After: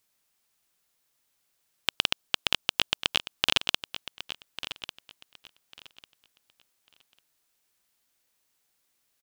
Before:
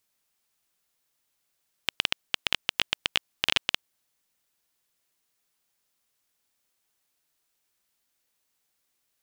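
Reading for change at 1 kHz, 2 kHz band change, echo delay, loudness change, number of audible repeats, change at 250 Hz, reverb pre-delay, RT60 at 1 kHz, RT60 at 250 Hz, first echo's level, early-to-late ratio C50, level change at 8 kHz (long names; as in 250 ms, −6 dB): +2.5 dB, −0.5 dB, 1,147 ms, −0.5 dB, 2, +2.5 dB, no reverb audible, no reverb audible, no reverb audible, −12.5 dB, no reverb audible, +2.0 dB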